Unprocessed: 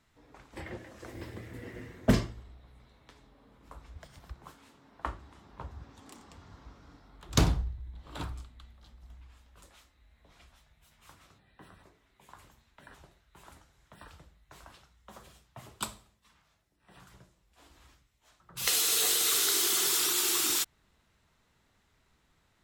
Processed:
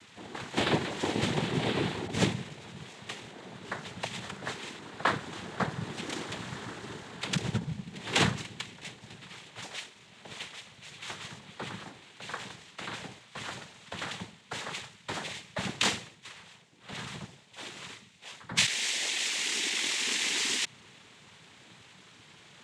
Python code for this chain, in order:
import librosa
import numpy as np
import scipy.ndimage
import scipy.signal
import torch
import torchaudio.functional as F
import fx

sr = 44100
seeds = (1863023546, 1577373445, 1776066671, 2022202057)

y = fx.peak_eq(x, sr, hz=3200.0, db=13.0, octaves=0.31)
y = fx.over_compress(y, sr, threshold_db=-35.0, ratio=-1.0)
y = fx.noise_vocoder(y, sr, seeds[0], bands=6)
y = F.gain(torch.from_numpy(y), 8.5).numpy()